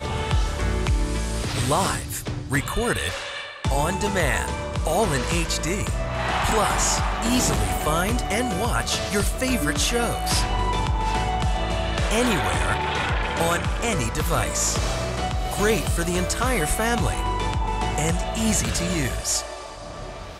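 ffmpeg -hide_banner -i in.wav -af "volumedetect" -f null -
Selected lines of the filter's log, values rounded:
mean_volume: -23.3 dB
max_volume: -10.7 dB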